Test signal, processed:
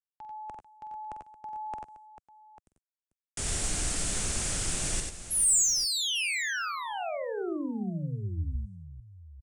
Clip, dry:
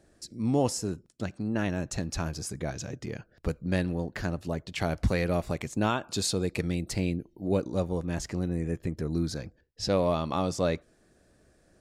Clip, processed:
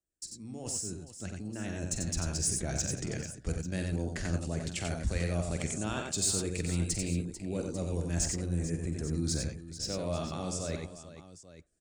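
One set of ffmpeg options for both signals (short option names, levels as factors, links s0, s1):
-filter_complex "[0:a]aresample=22050,aresample=44100,areverse,acompressor=threshold=0.0251:ratio=8,areverse,highshelf=f=3900:g=-3,acrossover=split=180|3800[s0][s1][s2];[s2]asoftclip=type=tanh:threshold=0.0106[s3];[s0][s1][s3]amix=inputs=3:normalize=0,dynaudnorm=f=500:g=7:m=2.37,agate=range=0.0398:threshold=0.00158:ratio=16:detection=peak,equalizer=f=125:t=o:w=1:g=-6,equalizer=f=250:t=o:w=1:g=-5,equalizer=f=500:t=o:w=1:g=-6,equalizer=f=1000:t=o:w=1:g=-10,equalizer=f=2000:t=o:w=1:g=-4,equalizer=f=4000:t=o:w=1:g=-5,equalizer=f=8000:t=o:w=1:g=11,aecho=1:1:47|91|104|443|844:0.316|0.562|0.2|0.224|0.168"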